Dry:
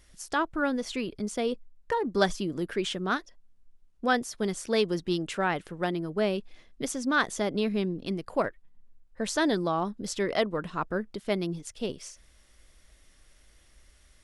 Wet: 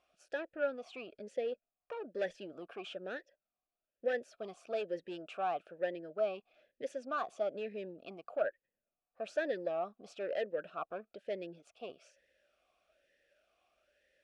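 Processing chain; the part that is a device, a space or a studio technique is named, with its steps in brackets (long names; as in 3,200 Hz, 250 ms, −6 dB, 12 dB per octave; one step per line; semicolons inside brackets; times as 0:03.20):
talk box (tube saturation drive 23 dB, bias 0.2; formant filter swept between two vowels a-e 1.1 Hz)
level +4 dB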